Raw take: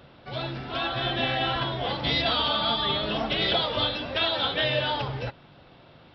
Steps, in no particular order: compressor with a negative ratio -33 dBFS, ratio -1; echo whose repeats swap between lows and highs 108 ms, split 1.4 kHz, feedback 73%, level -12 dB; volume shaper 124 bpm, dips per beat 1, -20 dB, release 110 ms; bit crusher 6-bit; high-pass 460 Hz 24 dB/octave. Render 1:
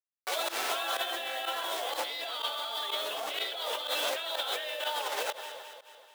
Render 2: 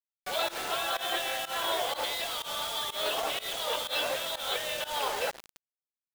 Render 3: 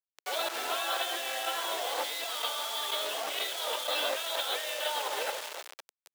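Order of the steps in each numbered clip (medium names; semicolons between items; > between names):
bit crusher > echo whose repeats swap between lows and highs > volume shaper > compressor with a negative ratio > high-pass; high-pass > compressor with a negative ratio > echo whose repeats swap between lows and highs > bit crusher > volume shaper; volume shaper > echo whose repeats swap between lows and highs > compressor with a negative ratio > bit crusher > high-pass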